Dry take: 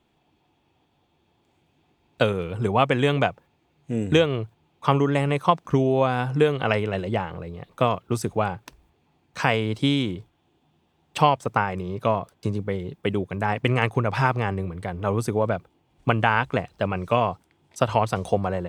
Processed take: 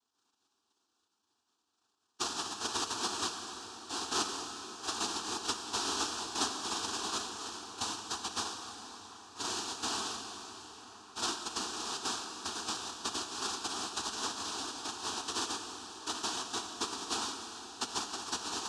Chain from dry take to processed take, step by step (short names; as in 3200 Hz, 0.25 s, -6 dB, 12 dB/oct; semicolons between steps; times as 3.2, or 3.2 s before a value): sine-wave speech; dynamic EQ 220 Hz, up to -4 dB, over -34 dBFS, Q 0.83; compressor 3:1, threshold -30 dBFS, peak gain reduction 15.5 dB; noise vocoder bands 1; air absorption 80 m; fixed phaser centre 560 Hz, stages 6; band-limited delay 0.989 s, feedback 82%, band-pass 1100 Hz, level -20.5 dB; reverb RT60 4.6 s, pre-delay 33 ms, DRR 4.5 dB